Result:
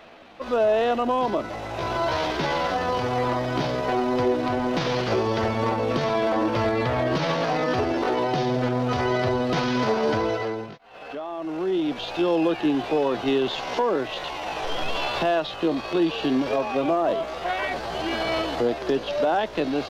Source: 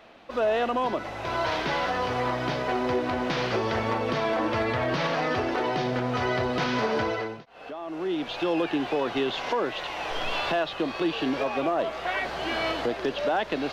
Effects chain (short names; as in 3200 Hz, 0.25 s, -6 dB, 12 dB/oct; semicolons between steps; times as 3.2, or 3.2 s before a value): dynamic EQ 1900 Hz, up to -5 dB, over -41 dBFS, Q 0.76; tempo 0.69×; gain +4.5 dB